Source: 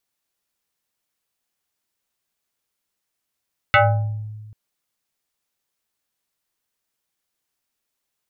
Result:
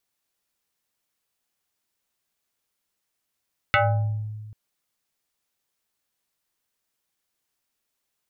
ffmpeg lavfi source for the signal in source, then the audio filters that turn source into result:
-f lavfi -i "aevalsrc='0.355*pow(10,-3*t/1.56)*sin(2*PI*107*t+3.7*pow(10,-3*t/0.64)*sin(2*PI*6.52*107*t))':d=0.79:s=44100"
-af "acompressor=threshold=-21dB:ratio=2.5"

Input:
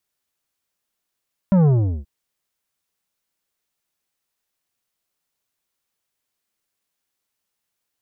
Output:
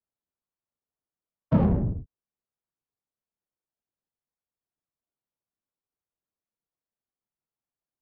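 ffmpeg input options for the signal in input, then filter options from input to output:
-f lavfi -i "aevalsrc='0.237*clip((0.53-t)/0.39,0,1)*tanh(3.16*sin(2*PI*200*0.53/log(65/200)*(exp(log(65/200)*t/0.53)-1)))/tanh(3.16)':d=0.53:s=44100"
-filter_complex "[0:a]acrossover=split=120|300|730[a][b][c][d];[d]acontrast=83[e];[a][b][c][e]amix=inputs=4:normalize=0,afftfilt=real='hypot(re,im)*cos(2*PI*random(0))':imag='hypot(re,im)*sin(2*PI*random(1))':win_size=512:overlap=0.75,adynamicsmooth=sensitivity=1.5:basefreq=600"

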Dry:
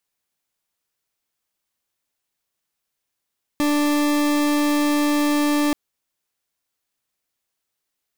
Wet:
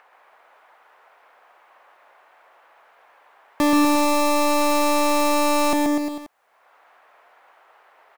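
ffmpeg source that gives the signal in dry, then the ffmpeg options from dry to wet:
-f lavfi -i "aevalsrc='0.112*(2*lt(mod(294*t,1),0.4)-1)':d=2.13:s=44100"
-filter_complex "[0:a]acrossover=split=510|2000[a][b][c];[b]acompressor=mode=upward:threshold=-34dB:ratio=2.5[d];[a][d][c]amix=inputs=3:normalize=0,equalizer=f=740:w=0.95:g=6,aecho=1:1:130|247|352.3|447.1|532.4:0.631|0.398|0.251|0.158|0.1"

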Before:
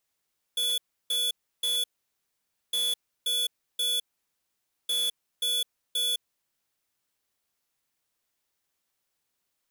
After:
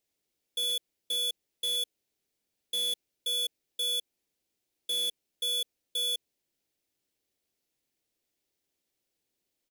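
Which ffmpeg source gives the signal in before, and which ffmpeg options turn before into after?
-f lavfi -i "aevalsrc='0.0447*(2*lt(mod(3430*t,1),0.5)-1)*clip(min(mod(mod(t,2.16),0.53),0.21-mod(mod(t,2.16),0.53))/0.005,0,1)*lt(mod(t,2.16),1.59)':d=6.48:s=44100"
-af "firequalizer=gain_entry='entry(170,0);entry(320,6);entry(1100,-11);entry(2200,-3);entry(4600,-2);entry(8700,-4)':delay=0.05:min_phase=1"

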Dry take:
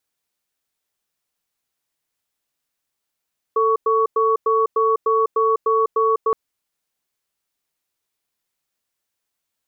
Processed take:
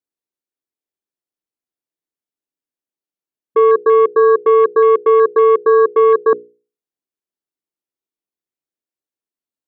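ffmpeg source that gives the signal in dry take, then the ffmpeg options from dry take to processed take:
-f lavfi -i "aevalsrc='0.141*(sin(2*PI*445*t)+sin(2*PI*1120*t))*clip(min(mod(t,0.3),0.2-mod(t,0.3))/0.005,0,1)':d=2.77:s=44100"
-af "equalizer=f=320:w=0.87:g=14.5,afwtdn=0.0708,bandreject=f=60:t=h:w=6,bandreject=f=120:t=h:w=6,bandreject=f=180:t=h:w=6,bandreject=f=240:t=h:w=6,bandreject=f=300:t=h:w=6,bandreject=f=360:t=h:w=6,bandreject=f=420:t=h:w=6,bandreject=f=480:t=h:w=6"

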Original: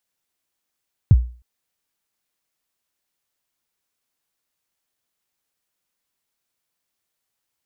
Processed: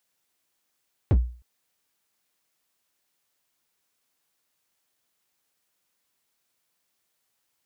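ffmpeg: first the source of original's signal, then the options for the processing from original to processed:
-f lavfi -i "aevalsrc='0.631*pow(10,-3*t/0.38)*sin(2*PI*(140*0.04/log(60/140)*(exp(log(60/140)*min(t,0.04)/0.04)-1)+60*max(t-0.04,0)))':d=0.31:s=44100"
-filter_complex "[0:a]asplit=2[a][b];[b]asoftclip=type=tanh:threshold=-15.5dB,volume=-5dB[c];[a][c]amix=inputs=2:normalize=0,lowshelf=f=77:g=-8,asoftclip=type=hard:threshold=-17dB"

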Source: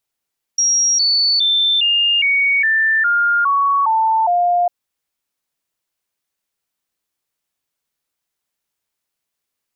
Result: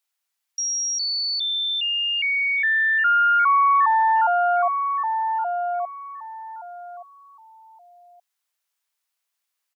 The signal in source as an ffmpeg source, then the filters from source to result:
-f lavfi -i "aevalsrc='0.251*clip(min(mod(t,0.41),0.41-mod(t,0.41))/0.005,0,1)*sin(2*PI*5640*pow(2,-floor(t/0.41)/3)*mod(t,0.41))':d=4.1:s=44100"
-filter_complex "[0:a]highpass=890,acrossover=split=1400[a][b];[a]aecho=1:1:1173|2346|3519:0.631|0.145|0.0334[c];[b]alimiter=limit=-22dB:level=0:latency=1:release=39[d];[c][d]amix=inputs=2:normalize=0"

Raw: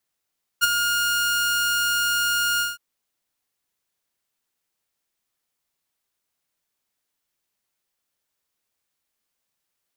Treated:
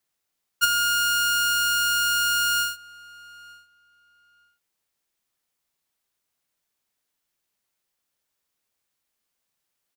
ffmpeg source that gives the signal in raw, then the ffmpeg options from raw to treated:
-f lavfi -i "aevalsrc='0.299*(2*mod(1420*t,1)-1)':d=2.164:s=44100,afade=t=in:d=0.028,afade=t=out:st=0.028:d=0.022:silence=0.447,afade=t=out:st=1.99:d=0.174"
-filter_complex "[0:a]asplit=2[a][b];[b]adelay=911,lowpass=f=2.4k:p=1,volume=-20.5dB,asplit=2[c][d];[d]adelay=911,lowpass=f=2.4k:p=1,volume=0.2[e];[a][c][e]amix=inputs=3:normalize=0"

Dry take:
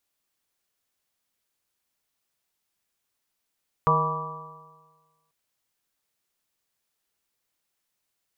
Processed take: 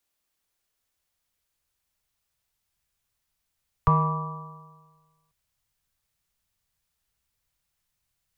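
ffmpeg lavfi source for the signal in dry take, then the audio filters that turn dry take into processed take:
-f lavfi -i "aevalsrc='0.0668*pow(10,-3*t/1.44)*sin(2*PI*155.22*t)+0.00668*pow(10,-3*t/1.44)*sin(2*PI*311.79*t)+0.0531*pow(10,-3*t/1.44)*sin(2*PI*471.03*t)+0.0282*pow(10,-3*t/1.44)*sin(2*PI*634.22*t)+0.0237*pow(10,-3*t/1.44)*sin(2*PI*802.6*t)+0.0891*pow(10,-3*t/1.44)*sin(2*PI*977.34*t)+0.119*pow(10,-3*t/1.44)*sin(2*PI*1159.53*t)':d=1.44:s=44100"
-filter_complex "[0:a]asubboost=boost=8.5:cutoff=110,acrossover=split=110|320|660[a][b][c][d];[c]asoftclip=type=tanh:threshold=-33.5dB[e];[a][b][e][d]amix=inputs=4:normalize=0"

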